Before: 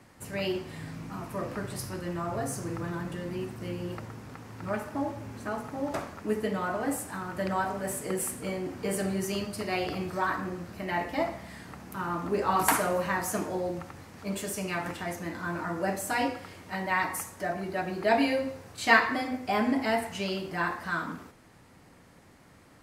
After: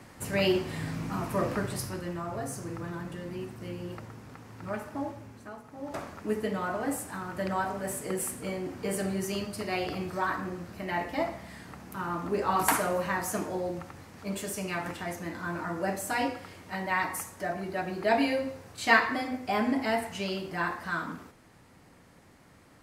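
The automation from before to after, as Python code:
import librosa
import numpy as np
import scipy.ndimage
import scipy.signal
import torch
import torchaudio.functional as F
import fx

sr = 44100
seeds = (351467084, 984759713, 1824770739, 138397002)

y = fx.gain(x, sr, db=fx.line((1.47, 5.5), (2.24, -3.0), (5.06, -3.0), (5.64, -12.0), (6.08, -1.0)))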